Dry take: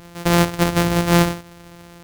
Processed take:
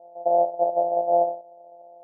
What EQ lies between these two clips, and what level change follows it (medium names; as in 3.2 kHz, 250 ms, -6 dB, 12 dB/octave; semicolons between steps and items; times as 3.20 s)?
resonant high-pass 630 Hz, resonance Q 7.6; Chebyshev low-pass 800 Hz, order 6; tilt EQ +3 dB/octave; -4.0 dB